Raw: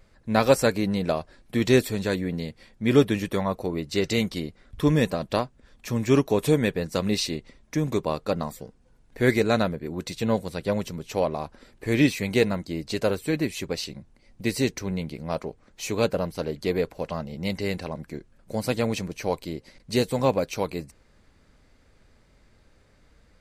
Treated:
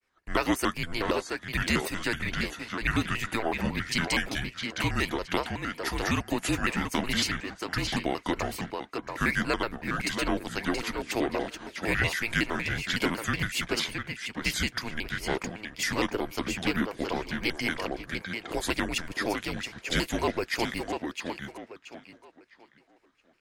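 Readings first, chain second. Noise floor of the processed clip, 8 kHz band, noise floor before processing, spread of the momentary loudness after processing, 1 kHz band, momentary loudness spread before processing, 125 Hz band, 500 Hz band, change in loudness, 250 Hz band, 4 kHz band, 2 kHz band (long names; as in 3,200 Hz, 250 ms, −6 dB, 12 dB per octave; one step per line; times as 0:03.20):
−61 dBFS, +0.5 dB, −59 dBFS, 7 LU, −0.5 dB, 14 LU, −7.0 dB, −9.0 dB, −4.0 dB, −5.5 dB, +2.0 dB, +4.5 dB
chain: high-pass filter 170 Hz
downward expander −53 dBFS
drawn EQ curve 300 Hz 0 dB, 2,200 Hz +14 dB, 3,600 Hz +8 dB
downward compressor 2.5 to 1, threshold −21 dBFS, peak gain reduction 10 dB
frequency shifter −190 Hz
on a send: tape delay 667 ms, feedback 32%, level −3.5 dB, low-pass 5,500 Hz
on the sum: pitch modulation by a square or saw wave square 5.4 Hz, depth 250 cents
level −4.5 dB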